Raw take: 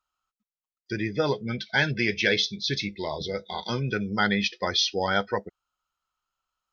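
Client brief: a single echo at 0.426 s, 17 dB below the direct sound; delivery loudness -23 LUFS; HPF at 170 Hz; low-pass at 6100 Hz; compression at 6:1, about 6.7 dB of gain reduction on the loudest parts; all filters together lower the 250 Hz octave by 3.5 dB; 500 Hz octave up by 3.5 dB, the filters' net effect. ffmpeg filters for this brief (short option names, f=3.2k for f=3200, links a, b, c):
-af "highpass=170,lowpass=6.1k,equalizer=f=250:t=o:g=-5,equalizer=f=500:t=o:g=5.5,acompressor=threshold=-24dB:ratio=6,aecho=1:1:426:0.141,volume=7dB"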